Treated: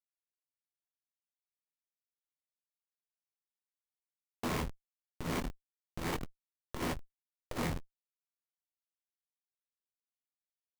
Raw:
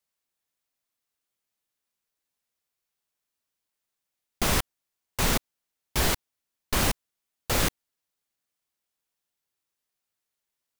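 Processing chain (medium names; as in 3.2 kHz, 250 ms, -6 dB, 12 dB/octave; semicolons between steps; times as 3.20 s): CVSD coder 32 kbps; vocoder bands 32, saw 83.1 Hz; band-stop 3.6 kHz, Q 28; on a send at -11.5 dB: reverberation RT60 0.65 s, pre-delay 3 ms; on the sum: dynamic bell 2.6 kHz, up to +5 dB, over -49 dBFS, Q 0.86; hum notches 50/100/150/200/250/300/350/400/450 Hz; frequency-shifting echo 456 ms, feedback 59%, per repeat +140 Hz, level -20 dB; level-controlled noise filter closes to 420 Hz, open at -30.5 dBFS; Schmitt trigger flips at -31.5 dBFS; doubling 25 ms -4.5 dB; transformer saturation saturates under 72 Hz; trim +7.5 dB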